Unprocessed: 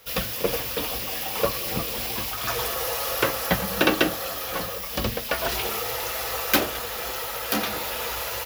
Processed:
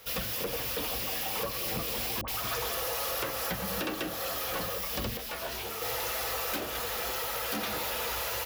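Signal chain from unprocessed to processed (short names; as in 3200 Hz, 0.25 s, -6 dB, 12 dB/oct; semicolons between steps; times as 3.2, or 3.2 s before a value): compressor, threshold -26 dBFS, peak gain reduction 11.5 dB; 2.21–2.82 dispersion highs, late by 69 ms, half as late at 1000 Hz; soft clip -27 dBFS, distortion -13 dB; 5.17–5.82 detuned doubles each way 32 cents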